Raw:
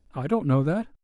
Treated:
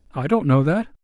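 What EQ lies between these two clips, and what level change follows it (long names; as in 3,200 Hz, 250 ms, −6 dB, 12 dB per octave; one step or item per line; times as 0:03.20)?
dynamic equaliser 2,100 Hz, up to +5 dB, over −45 dBFS, Q 0.94
+5.0 dB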